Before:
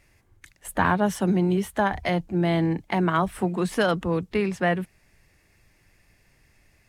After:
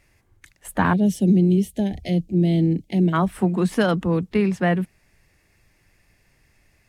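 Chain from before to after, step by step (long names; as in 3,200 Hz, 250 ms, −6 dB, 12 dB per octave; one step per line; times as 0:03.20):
0:00.93–0:03.13: Butterworth band-reject 1,200 Hz, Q 0.5
dynamic equaliser 210 Hz, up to +7 dB, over −36 dBFS, Q 1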